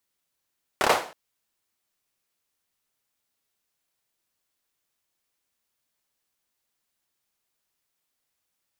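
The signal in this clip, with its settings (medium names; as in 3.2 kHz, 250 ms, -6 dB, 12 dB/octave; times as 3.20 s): hand clap length 0.32 s, apart 28 ms, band 730 Hz, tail 0.41 s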